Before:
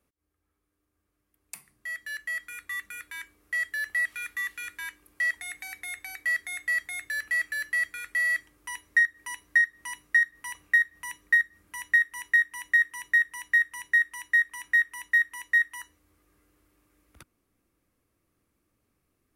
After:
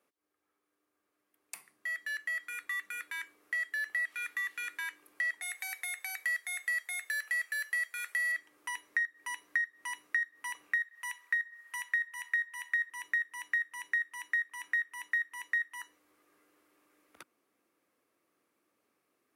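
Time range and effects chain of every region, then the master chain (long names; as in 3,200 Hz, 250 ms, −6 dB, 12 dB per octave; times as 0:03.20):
0:05.42–0:08.32: high-pass filter 500 Hz 24 dB per octave + high-shelf EQ 5,600 Hz +9.5 dB
0:10.78–0:12.90: high-pass filter 930 Hz + feedback echo with a low-pass in the loop 65 ms, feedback 83%, low-pass 1,800 Hz, level −20 dB
whole clip: downward compressor 2.5 to 1, threshold −36 dBFS; high-pass filter 380 Hz 12 dB per octave; high-shelf EQ 4,200 Hz −6 dB; level +2.5 dB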